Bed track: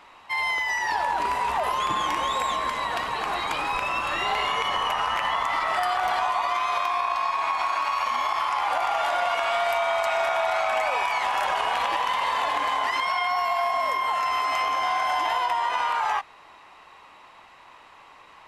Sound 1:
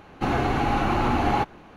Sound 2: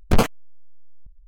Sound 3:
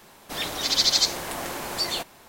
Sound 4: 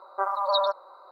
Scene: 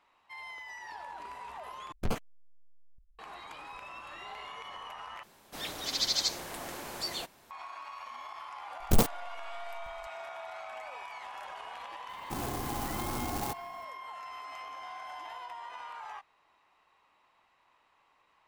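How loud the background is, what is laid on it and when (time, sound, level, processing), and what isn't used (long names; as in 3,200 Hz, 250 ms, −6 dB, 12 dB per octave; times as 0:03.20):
bed track −19 dB
0:01.92: overwrite with 2 −15.5 dB
0:05.23: overwrite with 3 −9 dB
0:08.80: mix in 2 −7 dB + converter with an unsteady clock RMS 0.15 ms
0:12.09: mix in 1 −13 dB + converter with an unsteady clock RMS 0.11 ms
not used: 4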